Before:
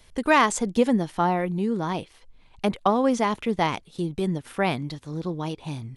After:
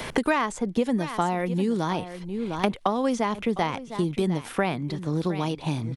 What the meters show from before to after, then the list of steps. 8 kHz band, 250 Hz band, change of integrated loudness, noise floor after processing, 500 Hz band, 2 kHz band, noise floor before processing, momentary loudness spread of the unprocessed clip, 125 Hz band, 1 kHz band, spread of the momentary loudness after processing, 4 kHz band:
-5.5 dB, -0.5 dB, -2.0 dB, -42 dBFS, -1.5 dB, -3.0 dB, -55 dBFS, 11 LU, +1.5 dB, -3.0 dB, 4 LU, -1.5 dB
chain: delay 706 ms -18 dB; three bands compressed up and down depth 100%; trim -2 dB

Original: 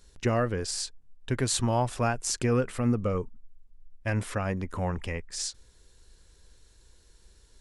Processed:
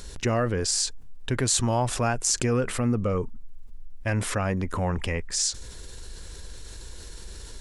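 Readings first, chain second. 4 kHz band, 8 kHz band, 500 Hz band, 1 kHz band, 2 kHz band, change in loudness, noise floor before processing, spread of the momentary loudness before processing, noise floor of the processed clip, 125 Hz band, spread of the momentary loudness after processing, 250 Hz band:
+5.5 dB, +7.5 dB, +2.0 dB, +2.0 dB, +3.5 dB, +3.5 dB, -60 dBFS, 9 LU, -42 dBFS, +2.5 dB, 20 LU, +2.0 dB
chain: dynamic bell 6.8 kHz, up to +6 dB, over -46 dBFS, Q 1.4; level flattener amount 50%

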